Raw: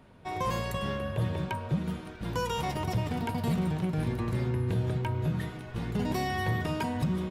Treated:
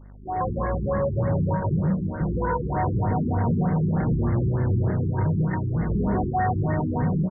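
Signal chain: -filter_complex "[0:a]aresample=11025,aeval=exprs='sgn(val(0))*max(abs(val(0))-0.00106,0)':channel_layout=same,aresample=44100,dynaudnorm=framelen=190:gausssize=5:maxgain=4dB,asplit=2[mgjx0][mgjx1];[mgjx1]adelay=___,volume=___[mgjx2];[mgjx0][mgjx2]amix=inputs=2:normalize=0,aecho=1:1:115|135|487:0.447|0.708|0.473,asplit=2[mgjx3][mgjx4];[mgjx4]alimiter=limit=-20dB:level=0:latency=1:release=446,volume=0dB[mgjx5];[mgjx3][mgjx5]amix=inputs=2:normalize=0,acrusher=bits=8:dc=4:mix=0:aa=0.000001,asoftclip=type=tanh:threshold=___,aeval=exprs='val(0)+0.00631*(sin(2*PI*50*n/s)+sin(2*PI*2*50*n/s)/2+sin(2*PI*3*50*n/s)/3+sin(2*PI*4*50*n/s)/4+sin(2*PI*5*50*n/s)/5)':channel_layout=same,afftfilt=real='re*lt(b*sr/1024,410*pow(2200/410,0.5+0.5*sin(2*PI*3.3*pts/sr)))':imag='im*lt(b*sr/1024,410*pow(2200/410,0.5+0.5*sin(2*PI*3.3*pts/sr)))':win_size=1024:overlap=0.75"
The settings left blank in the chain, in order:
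31, -6.5dB, -17.5dB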